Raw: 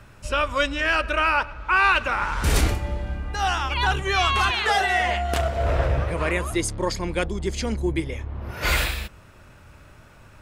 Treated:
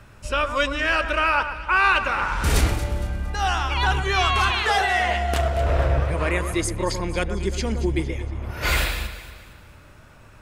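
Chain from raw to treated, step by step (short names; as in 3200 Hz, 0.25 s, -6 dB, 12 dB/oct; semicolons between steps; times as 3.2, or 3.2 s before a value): echo with dull and thin repeats by turns 0.115 s, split 1800 Hz, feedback 64%, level -9 dB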